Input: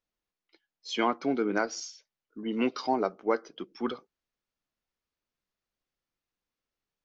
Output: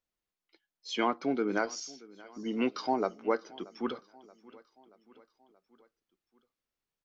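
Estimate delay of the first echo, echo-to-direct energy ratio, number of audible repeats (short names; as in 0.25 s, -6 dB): 0.629 s, -20.5 dB, 3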